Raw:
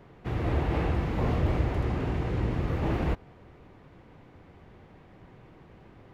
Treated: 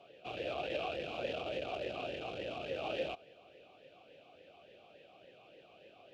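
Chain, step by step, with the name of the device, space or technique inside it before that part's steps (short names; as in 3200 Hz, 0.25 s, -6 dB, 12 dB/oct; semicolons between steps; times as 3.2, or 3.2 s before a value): talk box (tube stage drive 29 dB, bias 0.45; vowel sweep a-e 3.5 Hz); EQ curve 500 Hz 0 dB, 1700 Hz -6 dB, 3100 Hz +15 dB; gain +9.5 dB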